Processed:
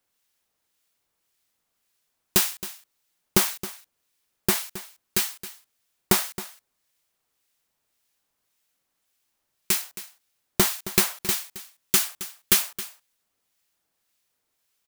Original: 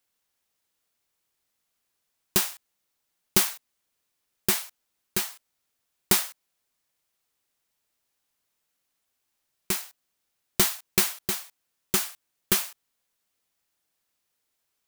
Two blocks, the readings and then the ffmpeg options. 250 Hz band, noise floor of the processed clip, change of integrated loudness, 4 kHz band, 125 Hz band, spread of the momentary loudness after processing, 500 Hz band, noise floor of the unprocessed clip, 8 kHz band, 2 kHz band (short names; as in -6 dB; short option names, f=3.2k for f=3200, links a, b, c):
+3.5 dB, -78 dBFS, +2.5 dB, +2.5 dB, +3.5 dB, 18 LU, +3.5 dB, -79 dBFS, +2.5 dB, +2.5 dB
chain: -filter_complex "[0:a]acrossover=split=1600[a][b];[a]aeval=exprs='val(0)*(1-0.5/2+0.5/2*cos(2*PI*1.8*n/s))':c=same[c];[b]aeval=exprs='val(0)*(1-0.5/2-0.5/2*cos(2*PI*1.8*n/s))':c=same[d];[c][d]amix=inputs=2:normalize=0,aecho=1:1:269:0.178,volume=5dB"